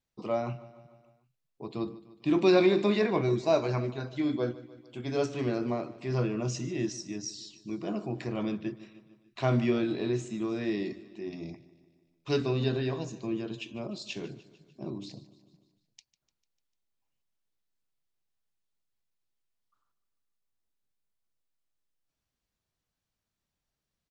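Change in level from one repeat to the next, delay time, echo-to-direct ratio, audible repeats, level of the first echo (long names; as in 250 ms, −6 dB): −4.5 dB, 149 ms, −16.0 dB, 4, −18.0 dB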